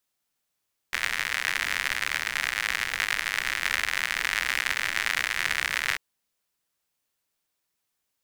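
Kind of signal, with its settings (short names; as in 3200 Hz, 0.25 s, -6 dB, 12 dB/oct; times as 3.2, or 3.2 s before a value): rain from filtered ticks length 5.04 s, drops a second 96, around 1900 Hz, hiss -18.5 dB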